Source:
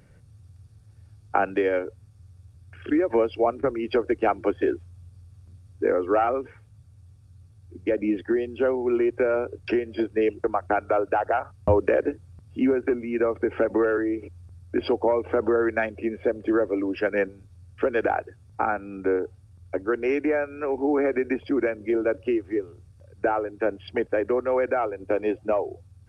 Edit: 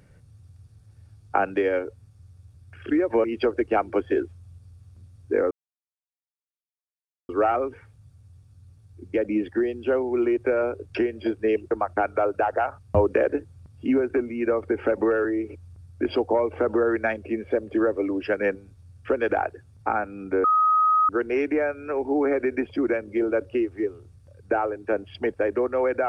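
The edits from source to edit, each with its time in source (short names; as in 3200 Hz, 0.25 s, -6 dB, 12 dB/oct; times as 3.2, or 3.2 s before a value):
3.24–3.75 cut
6.02 insert silence 1.78 s
19.17–19.82 bleep 1260 Hz -16 dBFS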